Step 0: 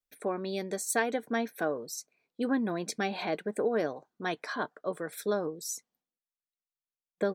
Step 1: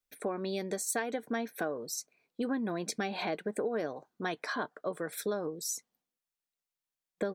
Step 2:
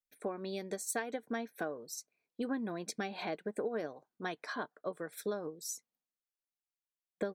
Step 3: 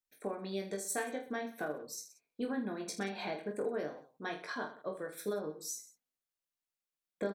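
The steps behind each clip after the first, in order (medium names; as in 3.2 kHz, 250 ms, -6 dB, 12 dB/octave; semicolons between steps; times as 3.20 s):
compression 3:1, threshold -34 dBFS, peak gain reduction 9 dB; trim +2.5 dB
upward expansion 1.5:1, over -46 dBFS; trim -2 dB
reverse bouncing-ball echo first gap 20 ms, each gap 1.3×, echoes 5; trim -2 dB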